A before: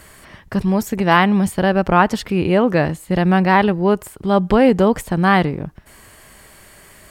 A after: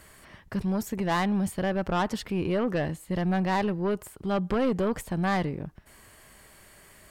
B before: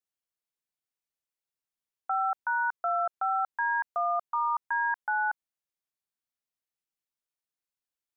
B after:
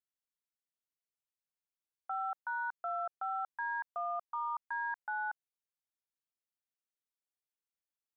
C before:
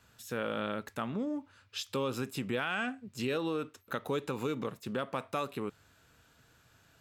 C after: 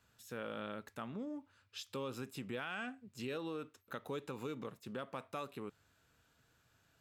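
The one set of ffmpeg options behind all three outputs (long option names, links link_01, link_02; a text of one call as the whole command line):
ffmpeg -i in.wav -af "asoftclip=type=tanh:threshold=-11.5dB,volume=-8.5dB" out.wav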